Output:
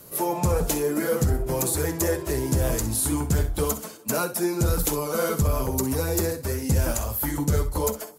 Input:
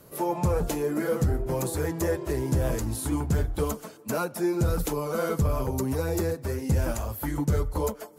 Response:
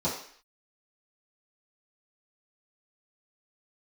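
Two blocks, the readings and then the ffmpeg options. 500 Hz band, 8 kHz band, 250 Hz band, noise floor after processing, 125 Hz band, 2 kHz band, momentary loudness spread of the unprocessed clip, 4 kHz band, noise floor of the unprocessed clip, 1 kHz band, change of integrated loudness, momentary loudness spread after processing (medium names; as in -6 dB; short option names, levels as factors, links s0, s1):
+2.0 dB, +10.0 dB, +1.5 dB, -41 dBFS, +2.0 dB, +3.5 dB, 4 LU, +7.0 dB, -48 dBFS, +2.5 dB, +3.0 dB, 3 LU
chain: -filter_complex "[0:a]highshelf=f=3700:g=9.5,acontrast=70,asplit=2[s0][s1];[s1]aecho=0:1:50|64:0.141|0.211[s2];[s0][s2]amix=inputs=2:normalize=0,volume=0.562"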